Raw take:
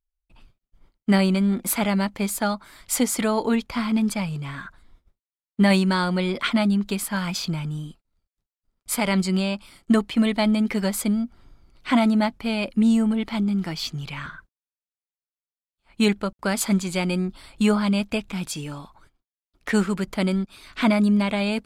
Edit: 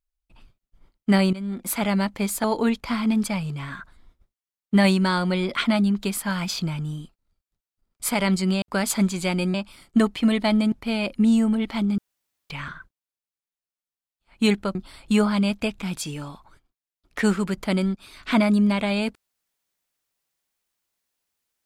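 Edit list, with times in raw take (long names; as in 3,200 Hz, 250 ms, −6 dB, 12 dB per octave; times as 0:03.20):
0:01.33–0:01.93: fade in, from −15 dB
0:02.44–0:03.30: remove
0:10.66–0:12.30: remove
0:13.56–0:14.08: fill with room tone
0:16.33–0:17.25: move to 0:09.48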